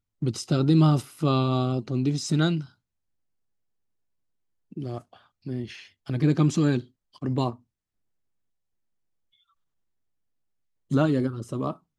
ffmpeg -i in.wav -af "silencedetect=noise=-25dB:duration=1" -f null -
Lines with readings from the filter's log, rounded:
silence_start: 2.60
silence_end: 4.85 | silence_duration: 2.25
silence_start: 7.50
silence_end: 10.92 | silence_duration: 3.42